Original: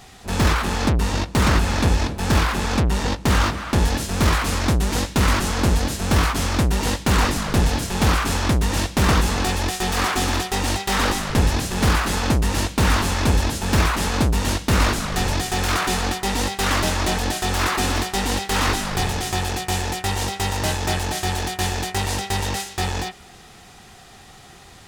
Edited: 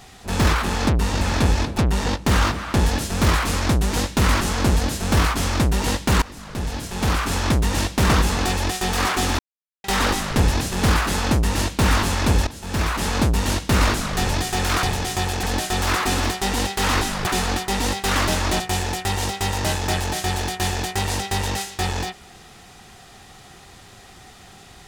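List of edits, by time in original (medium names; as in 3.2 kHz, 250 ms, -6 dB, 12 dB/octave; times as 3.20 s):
1.21–1.63 s: delete
2.20–2.77 s: delete
7.21–8.47 s: fade in, from -23 dB
10.38–10.83 s: mute
13.46–14.12 s: fade in, from -15.5 dB
15.82–17.15 s: swap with 18.99–19.59 s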